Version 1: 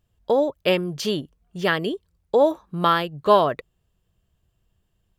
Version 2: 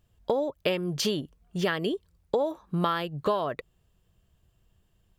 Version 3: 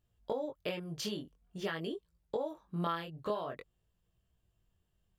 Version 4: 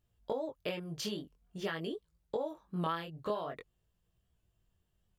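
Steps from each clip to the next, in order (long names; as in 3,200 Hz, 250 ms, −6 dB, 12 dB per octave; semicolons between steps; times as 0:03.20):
downward compressor 8 to 1, threshold −26 dBFS, peak gain reduction 16 dB; level +2.5 dB
chorus effect 0.48 Hz, delay 17 ms, depth 7.5 ms; level −7 dB
wow of a warped record 78 rpm, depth 100 cents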